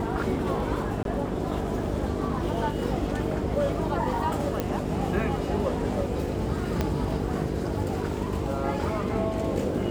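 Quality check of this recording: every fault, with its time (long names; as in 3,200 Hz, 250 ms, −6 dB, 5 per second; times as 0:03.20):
mains buzz 50 Hz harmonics 9 −32 dBFS
0:01.03–0:01.05: drop-out 22 ms
0:04.60: click −13 dBFS
0:06.81: click −12 dBFS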